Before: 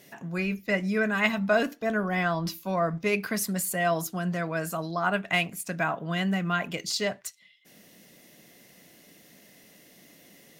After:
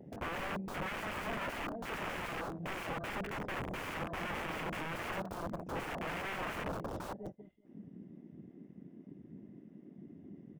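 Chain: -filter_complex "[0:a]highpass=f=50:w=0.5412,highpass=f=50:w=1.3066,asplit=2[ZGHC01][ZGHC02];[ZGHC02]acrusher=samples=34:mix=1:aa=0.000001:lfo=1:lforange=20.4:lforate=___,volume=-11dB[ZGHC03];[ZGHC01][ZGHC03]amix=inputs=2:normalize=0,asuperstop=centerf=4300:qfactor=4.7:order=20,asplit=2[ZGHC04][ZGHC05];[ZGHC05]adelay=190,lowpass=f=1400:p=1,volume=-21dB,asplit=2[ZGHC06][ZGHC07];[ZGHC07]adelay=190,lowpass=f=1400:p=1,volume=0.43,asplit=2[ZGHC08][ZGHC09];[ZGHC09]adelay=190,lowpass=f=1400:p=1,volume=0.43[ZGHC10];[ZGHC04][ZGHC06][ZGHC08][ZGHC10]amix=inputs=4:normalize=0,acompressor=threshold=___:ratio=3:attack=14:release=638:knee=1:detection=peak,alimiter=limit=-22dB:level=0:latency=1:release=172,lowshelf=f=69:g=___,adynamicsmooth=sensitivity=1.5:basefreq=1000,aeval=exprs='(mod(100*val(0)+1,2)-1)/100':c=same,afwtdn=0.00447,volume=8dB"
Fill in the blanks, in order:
2.3, -31dB, -3.5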